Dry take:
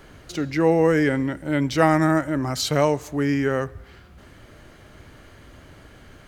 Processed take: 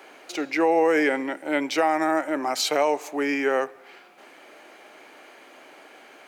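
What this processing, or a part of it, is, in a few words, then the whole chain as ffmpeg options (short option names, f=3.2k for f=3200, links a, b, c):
laptop speaker: -af "highpass=f=310:w=0.5412,highpass=f=310:w=1.3066,equalizer=f=790:t=o:w=0.52:g=8,equalizer=f=2.4k:t=o:w=0.33:g=8.5,alimiter=limit=-11.5dB:level=0:latency=1:release=118"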